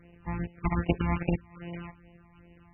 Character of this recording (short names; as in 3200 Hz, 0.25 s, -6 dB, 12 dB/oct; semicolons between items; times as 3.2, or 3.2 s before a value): a buzz of ramps at a fixed pitch in blocks of 256 samples; phasing stages 12, 2.5 Hz, lowest notch 460–1400 Hz; MP3